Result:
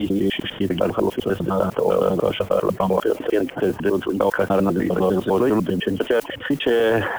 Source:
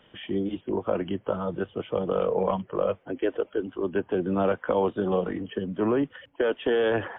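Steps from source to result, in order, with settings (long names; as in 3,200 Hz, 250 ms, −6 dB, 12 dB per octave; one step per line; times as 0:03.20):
slices reordered back to front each 100 ms, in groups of 6
noise that follows the level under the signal 29 dB
envelope flattener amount 50%
level +5 dB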